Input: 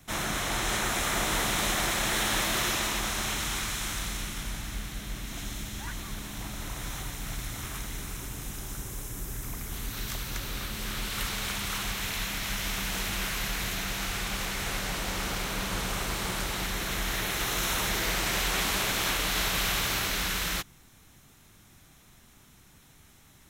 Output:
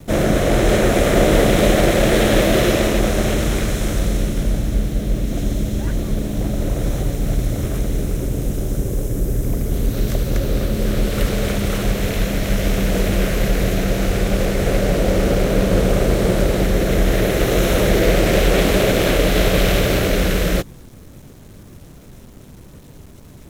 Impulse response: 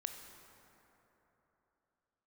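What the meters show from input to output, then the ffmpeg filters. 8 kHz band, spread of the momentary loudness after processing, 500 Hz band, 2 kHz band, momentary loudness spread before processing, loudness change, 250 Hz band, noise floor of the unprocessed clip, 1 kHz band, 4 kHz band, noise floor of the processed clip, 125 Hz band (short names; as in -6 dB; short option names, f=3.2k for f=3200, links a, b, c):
+2.5 dB, 8 LU, +22.0 dB, +6.0 dB, 11 LU, +11.5 dB, +19.0 dB, -57 dBFS, +7.5 dB, +4.0 dB, -41 dBFS, +18.0 dB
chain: -filter_complex "[0:a]lowshelf=f=720:t=q:w=3:g=8.5,asplit=2[a][b];[b]adynamicsmooth=sensitivity=6:basefreq=520,volume=0dB[c];[a][c]amix=inputs=2:normalize=0,acrusher=bits=7:mix=0:aa=0.5,volume=3.5dB"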